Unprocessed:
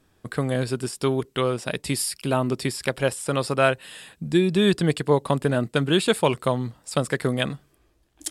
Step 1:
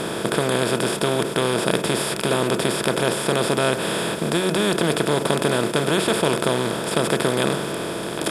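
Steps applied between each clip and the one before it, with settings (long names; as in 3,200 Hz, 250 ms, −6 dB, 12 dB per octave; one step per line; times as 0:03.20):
compressor on every frequency bin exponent 0.2
hum removal 90.99 Hz, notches 33
level −6.5 dB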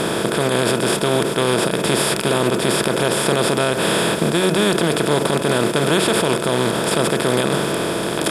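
brickwall limiter −12.5 dBFS, peak gain reduction 11 dB
level +6 dB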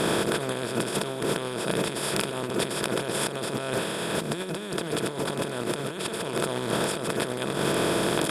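compressor whose output falls as the input rises −21 dBFS, ratio −0.5
level −6.5 dB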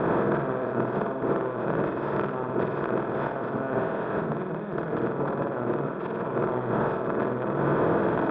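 transistor ladder low-pass 1,600 Hz, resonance 25%
on a send: flutter between parallel walls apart 8.4 metres, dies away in 0.64 s
on the sum: level +5.5 dB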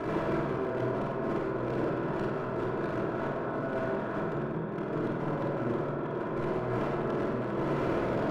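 gain into a clipping stage and back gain 24 dB
rectangular room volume 1,900 cubic metres, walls mixed, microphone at 3 metres
level −9 dB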